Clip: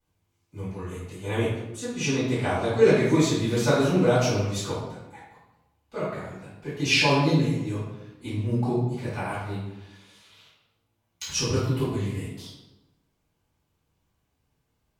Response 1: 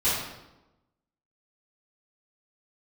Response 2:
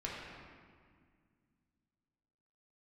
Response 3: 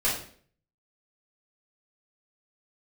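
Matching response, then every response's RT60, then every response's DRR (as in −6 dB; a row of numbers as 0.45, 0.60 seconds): 1; 1.0, 1.9, 0.50 seconds; −13.5, −6.0, −8.5 decibels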